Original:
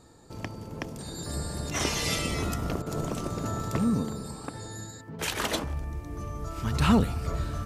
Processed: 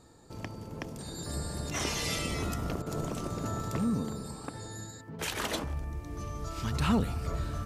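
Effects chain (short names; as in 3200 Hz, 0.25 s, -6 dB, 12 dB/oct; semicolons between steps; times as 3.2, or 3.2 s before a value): 5.98–6.7 dynamic EQ 4400 Hz, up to +7 dB, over -59 dBFS, Q 0.75; in parallel at -2 dB: limiter -22.5 dBFS, peak gain reduction 11.5 dB; on the sum: gain -7.5 dB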